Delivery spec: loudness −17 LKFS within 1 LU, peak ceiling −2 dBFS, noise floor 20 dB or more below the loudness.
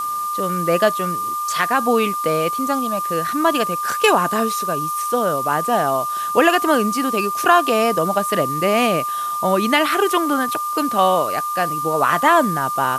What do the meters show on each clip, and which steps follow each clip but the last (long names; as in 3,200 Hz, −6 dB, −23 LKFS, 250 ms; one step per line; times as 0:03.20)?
interfering tone 1,200 Hz; level of the tone −21 dBFS; background noise floor −24 dBFS; target noise floor −39 dBFS; integrated loudness −18.5 LKFS; sample peak −1.5 dBFS; target loudness −17.0 LKFS
→ notch filter 1,200 Hz, Q 30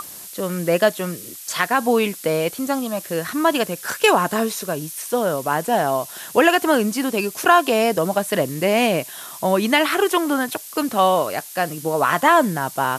interfering tone none found; background noise floor −37 dBFS; target noise floor −40 dBFS
→ noise reduction from a noise print 6 dB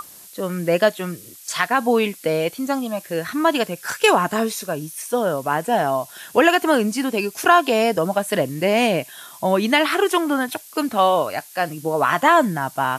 background noise floor −43 dBFS; integrated loudness −20.0 LKFS; sample peak −1.5 dBFS; target loudness −17.0 LKFS
→ level +3 dB
brickwall limiter −2 dBFS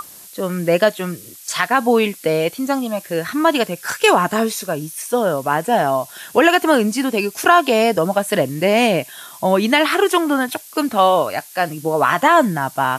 integrated loudness −17.5 LKFS; sample peak −2.0 dBFS; background noise floor −40 dBFS